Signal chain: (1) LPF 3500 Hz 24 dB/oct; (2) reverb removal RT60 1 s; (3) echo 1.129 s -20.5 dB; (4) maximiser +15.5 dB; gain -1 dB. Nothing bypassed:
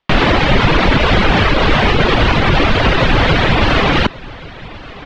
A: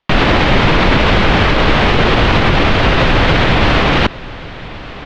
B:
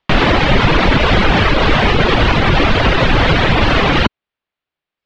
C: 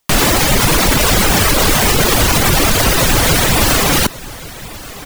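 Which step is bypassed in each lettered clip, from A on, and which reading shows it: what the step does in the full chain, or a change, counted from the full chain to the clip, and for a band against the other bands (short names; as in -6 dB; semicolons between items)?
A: 2, momentary loudness spread change -2 LU; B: 3, momentary loudness spread change -19 LU; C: 1, 4 kHz band +4.0 dB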